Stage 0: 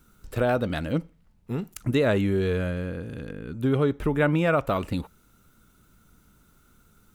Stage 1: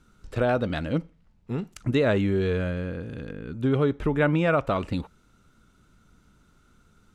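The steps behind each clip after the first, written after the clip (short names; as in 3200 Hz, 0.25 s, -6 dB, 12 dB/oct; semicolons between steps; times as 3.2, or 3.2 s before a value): LPF 6600 Hz 12 dB/oct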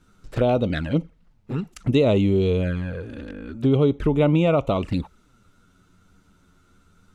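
envelope flanger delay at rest 11.8 ms, full sweep at -22 dBFS; gain +5 dB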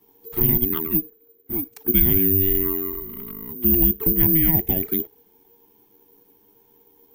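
frequency shift -480 Hz; careless resampling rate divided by 3×, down filtered, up zero stuff; gain -4 dB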